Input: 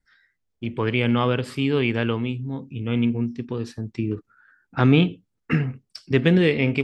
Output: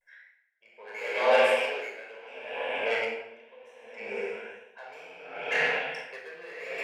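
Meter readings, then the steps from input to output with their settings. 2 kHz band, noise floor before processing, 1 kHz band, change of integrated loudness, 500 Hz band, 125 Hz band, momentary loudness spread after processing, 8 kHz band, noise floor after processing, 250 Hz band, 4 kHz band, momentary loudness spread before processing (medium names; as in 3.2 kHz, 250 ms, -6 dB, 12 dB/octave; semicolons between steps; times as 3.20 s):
-0.5 dB, -76 dBFS, -0.5 dB, -5.5 dB, -3.5 dB, under -35 dB, 22 LU, no reading, -64 dBFS, -28.0 dB, -5.5 dB, 14 LU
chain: static phaser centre 1.2 kHz, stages 6; on a send: echo that smears into a reverb 477 ms, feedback 53%, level -12 dB; on the sum: overdrive pedal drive 23 dB, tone 3.5 kHz, clips at -8.5 dBFS; ladder high-pass 420 Hz, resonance 30%; vibrato 0.91 Hz 82 cents; simulated room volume 2200 m³, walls mixed, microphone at 5.4 m; logarithmic tremolo 0.7 Hz, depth 24 dB; trim -4 dB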